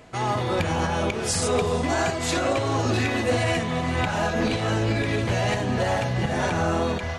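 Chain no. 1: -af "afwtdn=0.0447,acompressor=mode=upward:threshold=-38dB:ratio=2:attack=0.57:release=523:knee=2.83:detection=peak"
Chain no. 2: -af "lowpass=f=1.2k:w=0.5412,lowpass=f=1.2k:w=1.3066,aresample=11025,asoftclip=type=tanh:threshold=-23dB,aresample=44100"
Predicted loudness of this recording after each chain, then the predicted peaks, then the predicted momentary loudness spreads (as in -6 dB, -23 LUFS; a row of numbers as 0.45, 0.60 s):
-25.0, -28.5 LUFS; -13.0, -23.0 dBFS; 2, 1 LU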